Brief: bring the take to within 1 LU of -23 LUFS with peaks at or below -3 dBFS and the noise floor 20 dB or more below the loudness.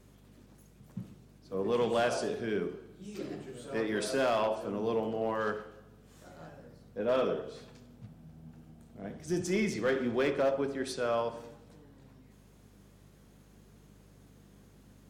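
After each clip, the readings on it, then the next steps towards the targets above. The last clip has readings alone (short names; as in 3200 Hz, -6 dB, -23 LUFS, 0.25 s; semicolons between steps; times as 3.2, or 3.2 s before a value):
clipped 0.4%; flat tops at -22.5 dBFS; hum 50 Hz; harmonics up to 200 Hz; hum level -56 dBFS; loudness -32.5 LUFS; peak -22.5 dBFS; loudness target -23.0 LUFS
-> clip repair -22.5 dBFS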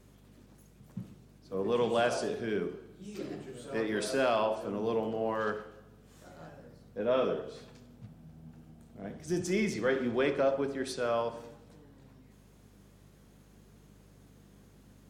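clipped 0.0%; hum 50 Hz; harmonics up to 200 Hz; hum level -56 dBFS
-> de-hum 50 Hz, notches 4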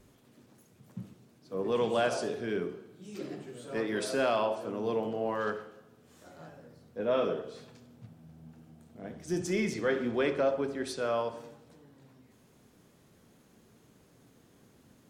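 hum none; loudness -32.0 LUFS; peak -18.0 dBFS; loudness target -23.0 LUFS
-> gain +9 dB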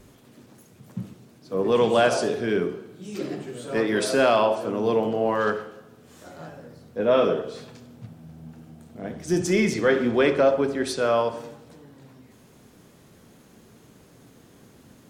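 loudness -23.0 LUFS; peak -9.0 dBFS; noise floor -54 dBFS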